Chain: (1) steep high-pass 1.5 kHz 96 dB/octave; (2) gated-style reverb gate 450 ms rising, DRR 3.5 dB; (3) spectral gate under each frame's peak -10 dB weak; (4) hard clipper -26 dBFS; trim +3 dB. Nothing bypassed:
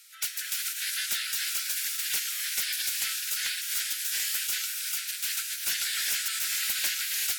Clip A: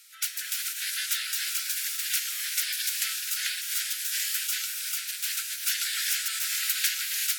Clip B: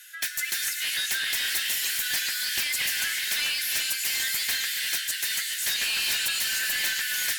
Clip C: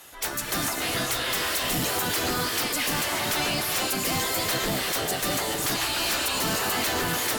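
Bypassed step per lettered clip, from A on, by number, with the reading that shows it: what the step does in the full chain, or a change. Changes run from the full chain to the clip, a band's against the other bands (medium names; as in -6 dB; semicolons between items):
4, distortion -15 dB; 3, 2 kHz band +4.0 dB; 1, 1 kHz band +16.0 dB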